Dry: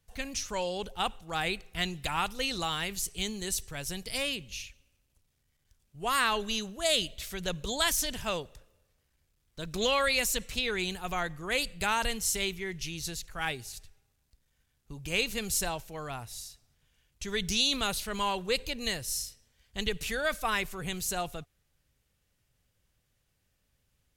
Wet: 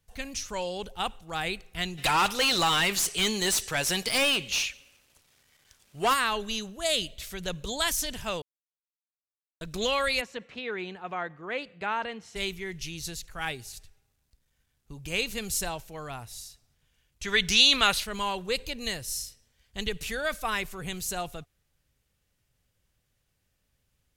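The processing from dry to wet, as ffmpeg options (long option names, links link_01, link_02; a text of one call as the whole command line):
ffmpeg -i in.wav -filter_complex "[0:a]asplit=3[link_01][link_02][link_03];[link_01]afade=type=out:start_time=1.97:duration=0.02[link_04];[link_02]asplit=2[link_05][link_06];[link_06]highpass=frequency=720:poles=1,volume=23dB,asoftclip=type=tanh:threshold=-15.5dB[link_07];[link_05][link_07]amix=inputs=2:normalize=0,lowpass=frequency=6500:poles=1,volume=-6dB,afade=type=in:start_time=1.97:duration=0.02,afade=type=out:start_time=6.13:duration=0.02[link_08];[link_03]afade=type=in:start_time=6.13:duration=0.02[link_09];[link_04][link_08][link_09]amix=inputs=3:normalize=0,asplit=3[link_10][link_11][link_12];[link_10]afade=type=out:start_time=10.2:duration=0.02[link_13];[link_11]highpass=220,lowpass=2000,afade=type=in:start_time=10.2:duration=0.02,afade=type=out:start_time=12.35:duration=0.02[link_14];[link_12]afade=type=in:start_time=12.35:duration=0.02[link_15];[link_13][link_14][link_15]amix=inputs=3:normalize=0,asplit=3[link_16][link_17][link_18];[link_16]afade=type=out:start_time=17.23:duration=0.02[link_19];[link_17]equalizer=frequency=1900:width=0.43:gain=11.5,afade=type=in:start_time=17.23:duration=0.02,afade=type=out:start_time=18.03:duration=0.02[link_20];[link_18]afade=type=in:start_time=18.03:duration=0.02[link_21];[link_19][link_20][link_21]amix=inputs=3:normalize=0,asplit=3[link_22][link_23][link_24];[link_22]atrim=end=8.42,asetpts=PTS-STARTPTS,afade=type=out:start_time=8.416:duration=0.004:curve=hsin[link_25];[link_23]atrim=start=8.42:end=9.61,asetpts=PTS-STARTPTS,volume=0[link_26];[link_24]atrim=start=9.61,asetpts=PTS-STARTPTS,afade=type=in:duration=0.004:curve=hsin[link_27];[link_25][link_26][link_27]concat=n=3:v=0:a=1" out.wav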